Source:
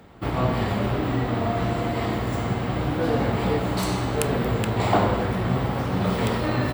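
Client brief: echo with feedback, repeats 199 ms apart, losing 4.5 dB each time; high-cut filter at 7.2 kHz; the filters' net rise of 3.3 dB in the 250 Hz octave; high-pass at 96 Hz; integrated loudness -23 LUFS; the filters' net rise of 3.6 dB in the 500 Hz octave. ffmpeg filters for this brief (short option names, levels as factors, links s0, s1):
-af "highpass=96,lowpass=7200,equalizer=f=250:t=o:g=3.5,equalizer=f=500:t=o:g=3.5,aecho=1:1:199|398|597|796|995|1194|1393|1592|1791:0.596|0.357|0.214|0.129|0.0772|0.0463|0.0278|0.0167|0.01,volume=0.75"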